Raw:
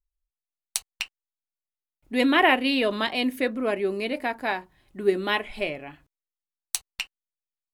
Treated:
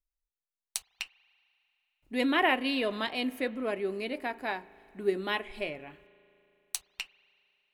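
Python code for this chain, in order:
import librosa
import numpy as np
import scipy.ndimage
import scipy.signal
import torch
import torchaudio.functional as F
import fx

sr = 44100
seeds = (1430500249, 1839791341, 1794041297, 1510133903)

y = fx.rev_spring(x, sr, rt60_s=3.1, pass_ms=(37,), chirp_ms=70, drr_db=20.0)
y = y * 10.0 ** (-6.5 / 20.0)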